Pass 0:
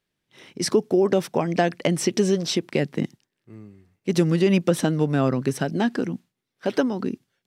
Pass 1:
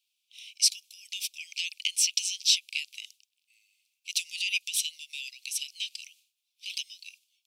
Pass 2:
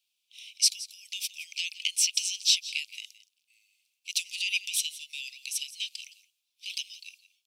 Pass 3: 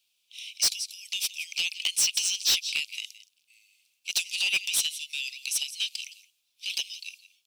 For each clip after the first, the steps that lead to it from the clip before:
steep high-pass 2400 Hz 96 dB/oct; gain +5.5 dB
tapped delay 0.165/0.175 s -20/-19.5 dB
soft clip -24.5 dBFS, distortion -8 dB; gain +6 dB

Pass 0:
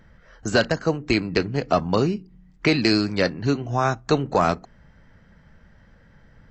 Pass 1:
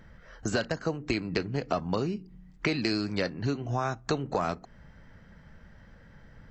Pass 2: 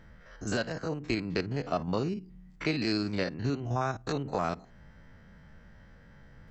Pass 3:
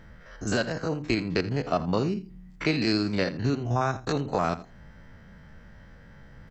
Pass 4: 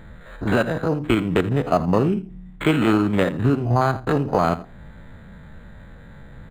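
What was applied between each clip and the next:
compressor 3:1, threshold -28 dBFS, peak gain reduction 11 dB
stepped spectrum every 50 ms
echo 83 ms -16.5 dB; gain +4.5 dB
decimation joined by straight lines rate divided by 8×; gain +7.5 dB

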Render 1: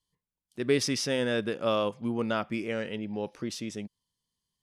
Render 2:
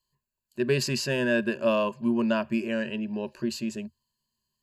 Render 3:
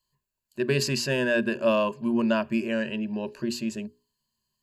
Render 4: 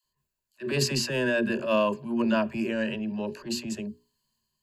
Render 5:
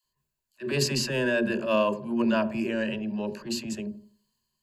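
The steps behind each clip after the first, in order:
ripple EQ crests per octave 1.4, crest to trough 15 dB
notches 60/120/180/240/300/360/420 Hz; gain +1.5 dB
transient shaper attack -11 dB, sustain +3 dB; dispersion lows, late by 44 ms, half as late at 460 Hz
dark delay 82 ms, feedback 32%, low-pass 800 Hz, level -11 dB

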